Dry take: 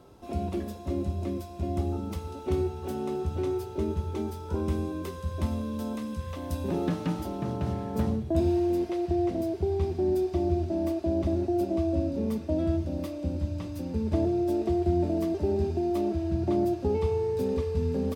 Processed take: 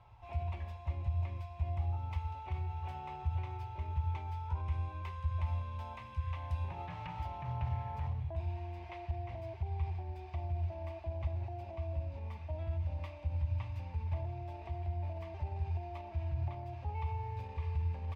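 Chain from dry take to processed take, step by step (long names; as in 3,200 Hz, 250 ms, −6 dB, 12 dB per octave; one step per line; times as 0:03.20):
brickwall limiter −24 dBFS, peak gain reduction 9.5 dB
drawn EQ curve 120 Hz 0 dB, 220 Hz −28 dB, 440 Hz −23 dB, 900 Hz +2 dB, 1,400 Hz −10 dB, 2,300 Hz +2 dB, 3,900 Hz −12 dB, 10,000 Hz −27 dB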